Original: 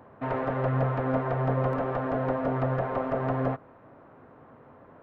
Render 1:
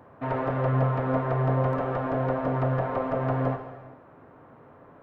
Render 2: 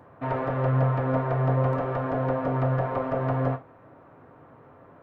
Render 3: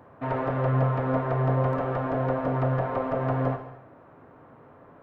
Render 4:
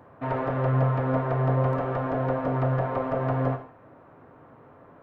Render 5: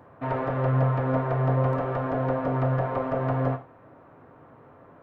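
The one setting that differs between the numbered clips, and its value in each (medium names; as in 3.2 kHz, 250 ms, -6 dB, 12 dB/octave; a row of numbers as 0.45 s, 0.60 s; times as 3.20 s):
gated-style reverb, gate: 490 ms, 90 ms, 330 ms, 200 ms, 130 ms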